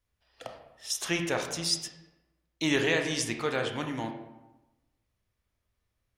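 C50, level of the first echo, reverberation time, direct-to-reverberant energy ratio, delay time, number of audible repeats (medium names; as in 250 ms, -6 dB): 6.5 dB, no echo, 1.0 s, 3.5 dB, no echo, no echo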